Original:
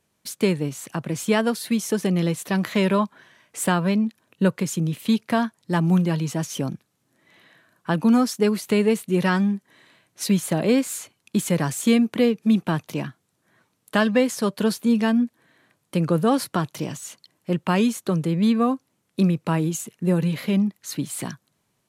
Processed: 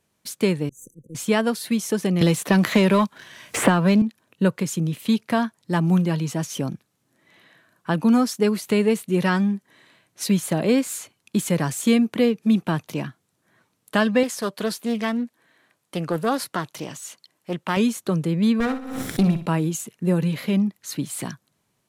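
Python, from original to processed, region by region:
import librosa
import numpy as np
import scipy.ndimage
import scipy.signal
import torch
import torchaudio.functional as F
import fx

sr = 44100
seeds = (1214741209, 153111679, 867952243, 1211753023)

y = fx.chain(x, sr, fx.auto_swell(attack_ms=182.0),
    fx.tube_stage(drive_db=29.0, bias=0.6),
    fx.brickwall_bandstop(low_hz=540.0, high_hz=5900.0), at=(0.69, 1.15))
y = fx.chain(y, sr, fx.leveller(passes=1),
    fx.band_squash(depth_pct=100), at=(2.21, 4.02))
y = fx.chain(y, sr, fx.low_shelf(hz=260.0, db=-9.5),
    fx.doppler_dist(depth_ms=0.21), at=(14.23, 17.77))
y = fx.chain(y, sr, fx.lower_of_two(delay_ms=0.55),
    fx.room_flutter(wall_m=10.4, rt60_s=0.37),
    fx.pre_swell(db_per_s=50.0), at=(18.6, 19.46))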